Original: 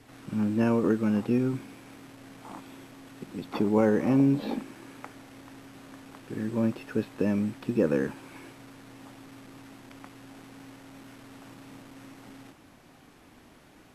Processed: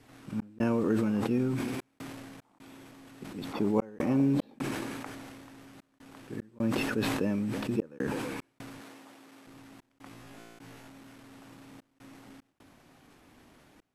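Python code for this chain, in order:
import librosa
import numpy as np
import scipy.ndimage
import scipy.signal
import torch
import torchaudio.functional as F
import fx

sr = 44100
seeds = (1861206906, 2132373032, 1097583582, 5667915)

y = x + 10.0 ** (-22.5 / 20.0) * np.pad(x, (int(328 * sr / 1000.0), 0))[:len(x)]
y = fx.step_gate(y, sr, bpm=75, pattern='xx.xxxxxx.', floor_db=-60.0, edge_ms=4.5)
y = fx.highpass(y, sr, hz=280.0, slope=12, at=(8.81, 9.47))
y = fx.room_flutter(y, sr, wall_m=3.0, rt60_s=0.43, at=(10.09, 10.88))
y = fx.sustainer(y, sr, db_per_s=22.0)
y = y * librosa.db_to_amplitude(-4.0)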